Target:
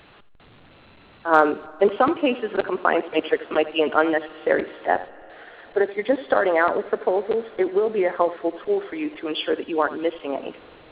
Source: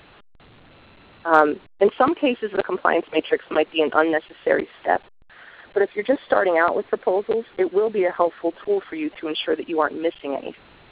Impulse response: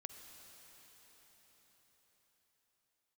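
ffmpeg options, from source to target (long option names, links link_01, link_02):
-filter_complex "[0:a]bandreject=frequency=46.11:width_type=h:width=4,bandreject=frequency=92.22:width_type=h:width=4,bandreject=frequency=138.33:width_type=h:width=4,asplit=2[link_01][link_02];[1:a]atrim=start_sample=2205,adelay=83[link_03];[link_02][link_03]afir=irnorm=-1:irlink=0,volume=-10.5dB[link_04];[link_01][link_04]amix=inputs=2:normalize=0,volume=-1dB"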